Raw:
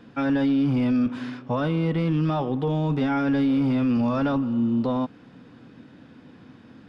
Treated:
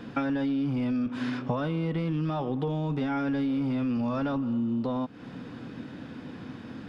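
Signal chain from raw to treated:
downward compressor 10 to 1, threshold −33 dBFS, peak gain reduction 13.5 dB
level +7 dB

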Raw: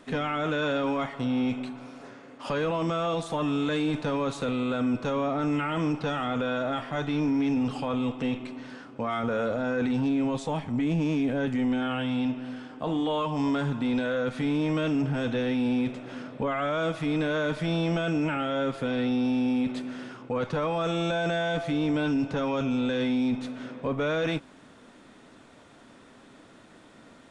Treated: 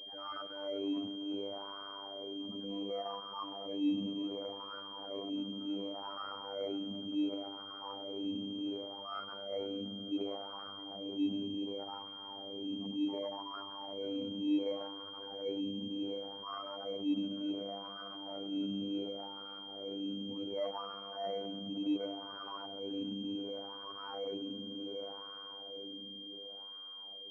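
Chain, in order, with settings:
time-frequency cells dropped at random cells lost 34%
low-shelf EQ 250 Hz +7 dB
echo that builds up and dies away 84 ms, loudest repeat 8, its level −17 dB
brickwall limiter −22 dBFS, peak gain reduction 8.5 dB
phases set to zero 99.1 Hz
LFO wah 0.68 Hz 230–1,200 Hz, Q 5.3
transient designer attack −6 dB, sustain +3 dB
switching amplifier with a slow clock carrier 3,200 Hz
level +3 dB

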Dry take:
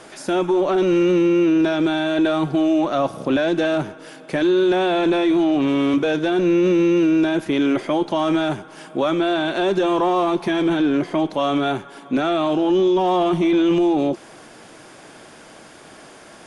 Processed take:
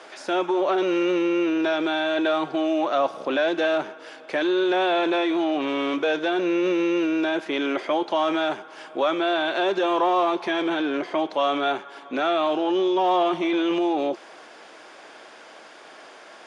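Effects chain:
band-pass filter 460–5,100 Hz

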